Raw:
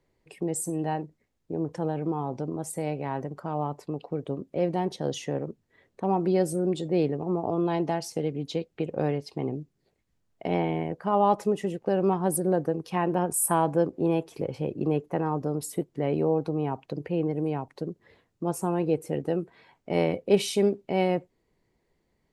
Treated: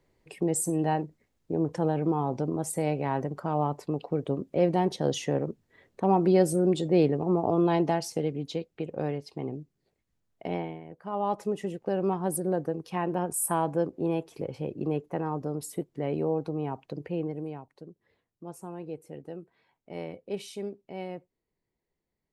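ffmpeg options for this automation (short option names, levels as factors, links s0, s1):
-af "volume=5.31,afade=t=out:st=7.73:d=0.99:silence=0.473151,afade=t=out:st=10.48:d=0.33:silence=0.266073,afade=t=in:st=10.81:d=0.81:silence=0.251189,afade=t=out:st=17.12:d=0.56:silence=0.334965"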